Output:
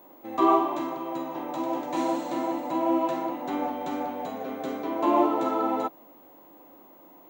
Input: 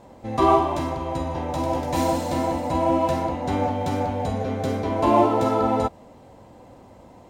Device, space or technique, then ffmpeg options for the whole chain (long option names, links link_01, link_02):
old television with a line whistle: -af "highpass=frequency=200:width=0.5412,highpass=frequency=200:width=1.3066,equalizer=frequency=210:width_type=q:width=4:gain=-8,equalizer=frequency=320:width_type=q:width=4:gain=7,equalizer=frequency=470:width_type=q:width=4:gain=-4,equalizer=frequency=1200:width_type=q:width=4:gain=5,equalizer=frequency=5100:width_type=q:width=4:gain=-10,lowpass=frequency=7400:width=0.5412,lowpass=frequency=7400:width=1.3066,aeval=exprs='val(0)+0.00398*sin(2*PI*15625*n/s)':channel_layout=same,volume=-5.5dB"